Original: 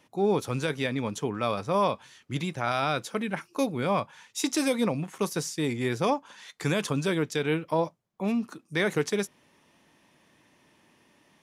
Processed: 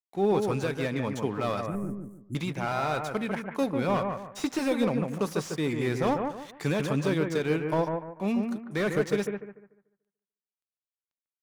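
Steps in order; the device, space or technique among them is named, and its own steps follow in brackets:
early transistor amplifier (dead-zone distortion −51.5 dBFS; slew-rate limiting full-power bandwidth 59 Hz)
0:01.66–0:02.35: elliptic band-stop filter 320–8,400 Hz, stop band 40 dB
bucket-brigade delay 146 ms, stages 2,048, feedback 31%, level −5 dB

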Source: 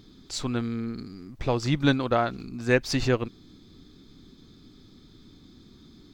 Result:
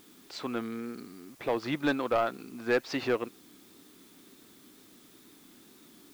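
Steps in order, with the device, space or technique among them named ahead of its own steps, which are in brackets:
tape answering machine (band-pass filter 320–2,900 Hz; soft clipping −18.5 dBFS, distortion −13 dB; tape wow and flutter; white noise bed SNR 25 dB)

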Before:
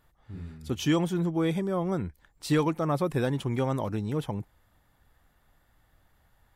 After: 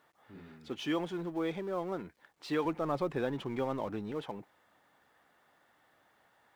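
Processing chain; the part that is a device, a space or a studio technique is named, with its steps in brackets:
phone line with mismatched companding (band-pass filter 320–3,400 Hz; mu-law and A-law mismatch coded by mu)
0:02.65–0:04.12: low-shelf EQ 150 Hz +11.5 dB
level −5.5 dB

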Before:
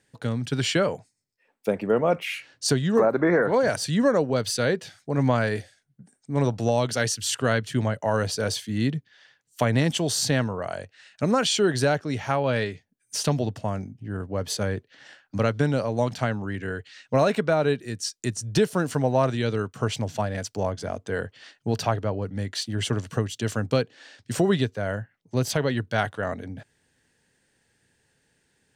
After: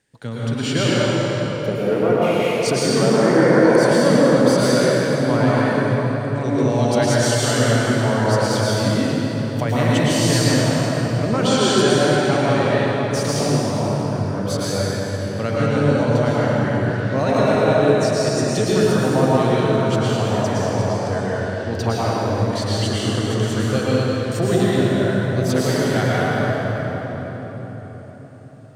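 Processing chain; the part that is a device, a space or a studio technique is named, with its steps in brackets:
cathedral (convolution reverb RT60 4.7 s, pre-delay 101 ms, DRR −8.5 dB)
level −2 dB

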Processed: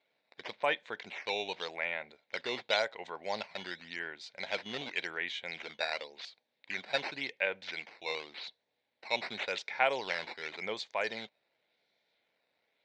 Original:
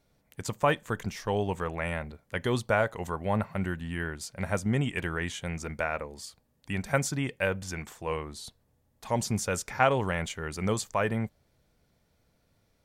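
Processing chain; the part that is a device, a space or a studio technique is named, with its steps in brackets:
circuit-bent sampling toy (sample-and-hold swept by an LFO 8×, swing 160% 0.9 Hz; loudspeaker in its box 520–4,800 Hz, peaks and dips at 1,200 Hz −10 dB, 2,200 Hz +8 dB, 3,800 Hz +10 dB)
level −3.5 dB

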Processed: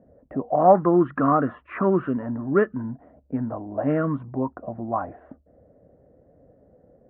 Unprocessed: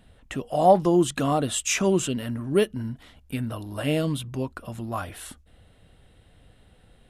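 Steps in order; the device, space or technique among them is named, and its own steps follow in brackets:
envelope filter bass rig (envelope-controlled low-pass 560–1,300 Hz up, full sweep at −20 dBFS; loudspeaker in its box 83–2,100 Hz, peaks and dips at 99 Hz −6 dB, 270 Hz +5 dB, 860 Hz −4 dB, 1,800 Hz +6 dB)

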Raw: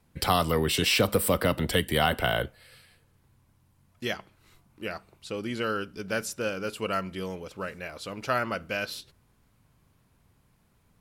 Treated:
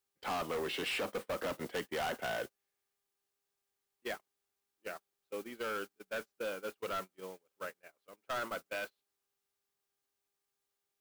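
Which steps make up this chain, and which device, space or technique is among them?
aircraft radio (band-pass filter 320–2,500 Hz; hard clipping −28.5 dBFS, distortion −6 dB; hum with harmonics 400 Hz, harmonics 4, −60 dBFS −4 dB per octave; white noise bed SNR 13 dB; noise gate −35 dBFS, range −33 dB)
level −4.5 dB

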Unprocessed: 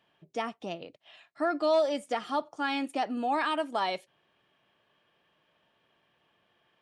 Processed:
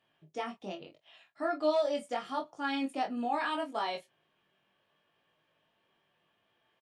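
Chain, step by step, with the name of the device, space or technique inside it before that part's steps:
double-tracked vocal (double-tracking delay 26 ms −9 dB; chorus effect 0.75 Hz, delay 18 ms, depth 2.9 ms)
level −1.5 dB

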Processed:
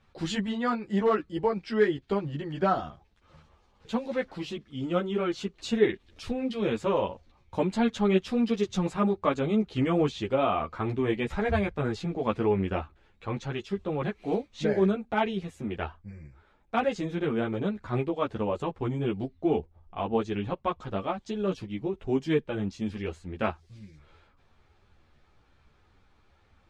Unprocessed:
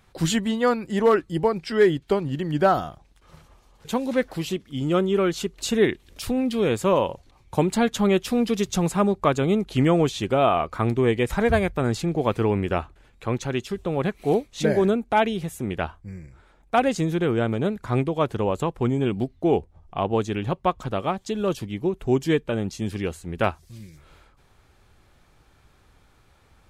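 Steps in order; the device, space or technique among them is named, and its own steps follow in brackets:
string-machine ensemble chorus (string-ensemble chorus; low-pass filter 4,800 Hz 12 dB per octave)
level −2.5 dB

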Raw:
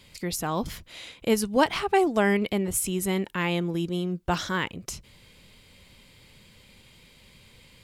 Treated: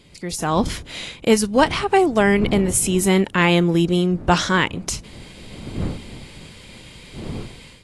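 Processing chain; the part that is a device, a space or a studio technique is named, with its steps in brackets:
smartphone video outdoors (wind on the microphone 230 Hz −43 dBFS; automatic gain control gain up to 12 dB; AAC 48 kbit/s 24,000 Hz)

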